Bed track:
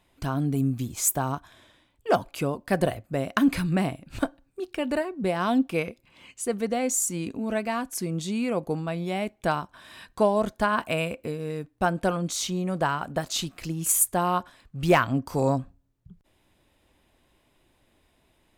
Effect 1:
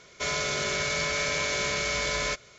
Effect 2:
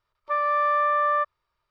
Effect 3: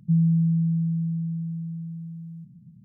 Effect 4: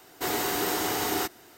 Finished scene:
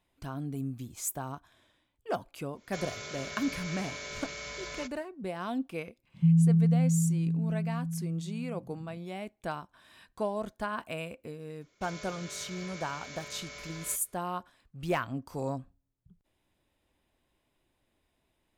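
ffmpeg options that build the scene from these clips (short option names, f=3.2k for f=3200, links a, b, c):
-filter_complex "[1:a]asplit=2[a][b];[0:a]volume=-10.5dB[c];[b]highpass=40[d];[a]atrim=end=2.58,asetpts=PTS-STARTPTS,volume=-12.5dB,afade=t=in:d=0.1,afade=t=out:st=2.48:d=0.1,adelay=2520[e];[3:a]atrim=end=2.84,asetpts=PTS-STARTPTS,volume=-1.5dB,afade=t=in:d=0.004:c=hsin,afade=t=out:st=2.836:d=0.004:c=hsin,adelay=6140[f];[d]atrim=end=2.58,asetpts=PTS-STARTPTS,volume=-17dB,afade=t=in:d=0.004:c=hsin,afade=t=out:st=2.576:d=0.004:c=hsin,adelay=11610[g];[c][e][f][g]amix=inputs=4:normalize=0"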